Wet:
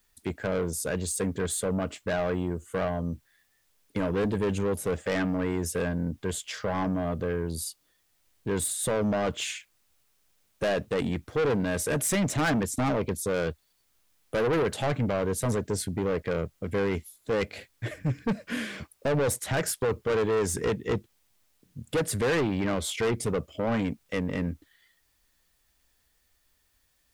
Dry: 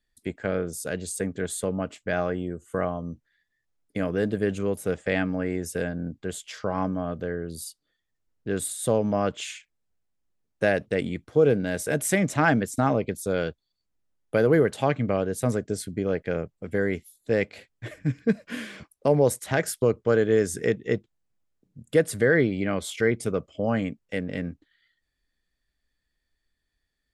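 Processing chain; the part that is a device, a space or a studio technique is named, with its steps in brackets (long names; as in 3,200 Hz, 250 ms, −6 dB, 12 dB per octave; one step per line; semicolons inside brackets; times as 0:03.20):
open-reel tape (soft clipping −26 dBFS, distortion −6 dB; parametric band 78 Hz +5 dB 0.86 octaves; white noise bed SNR 42 dB)
level +3.5 dB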